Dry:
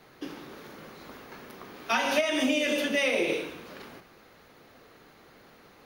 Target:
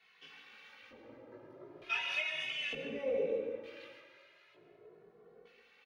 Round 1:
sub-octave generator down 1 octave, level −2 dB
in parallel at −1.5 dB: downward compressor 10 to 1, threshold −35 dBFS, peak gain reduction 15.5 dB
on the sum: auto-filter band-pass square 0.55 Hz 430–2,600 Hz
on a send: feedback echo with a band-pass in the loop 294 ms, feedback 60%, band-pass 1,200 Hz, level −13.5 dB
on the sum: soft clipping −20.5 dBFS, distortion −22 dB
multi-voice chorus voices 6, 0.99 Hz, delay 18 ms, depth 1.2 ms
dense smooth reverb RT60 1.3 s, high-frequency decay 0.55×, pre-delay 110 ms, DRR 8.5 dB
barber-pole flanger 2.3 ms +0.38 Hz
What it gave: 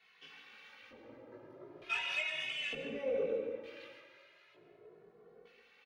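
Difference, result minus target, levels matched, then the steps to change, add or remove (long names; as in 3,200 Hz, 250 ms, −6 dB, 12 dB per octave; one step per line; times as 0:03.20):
soft clipping: distortion +14 dB
change: soft clipping −12.5 dBFS, distortion −37 dB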